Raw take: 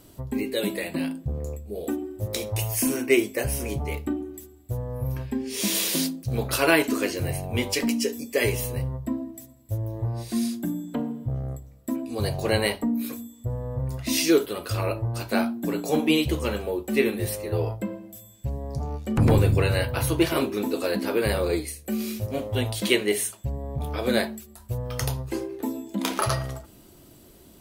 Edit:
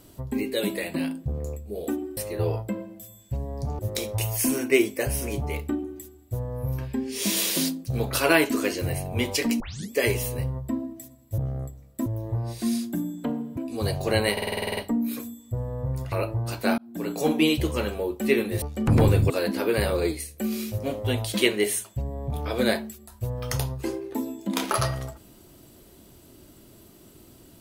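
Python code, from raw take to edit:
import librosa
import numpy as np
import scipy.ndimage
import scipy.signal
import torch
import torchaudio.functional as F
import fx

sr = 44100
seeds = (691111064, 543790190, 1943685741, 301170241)

y = fx.edit(x, sr, fx.tape_start(start_s=7.98, length_s=0.31),
    fx.move(start_s=11.27, length_s=0.68, to_s=9.76),
    fx.stutter(start_s=12.7, slice_s=0.05, count=10),
    fx.cut(start_s=14.05, length_s=0.75),
    fx.fade_in_span(start_s=15.46, length_s=0.37),
    fx.move(start_s=17.3, length_s=1.62, to_s=2.17),
    fx.cut(start_s=19.6, length_s=1.18), tone=tone)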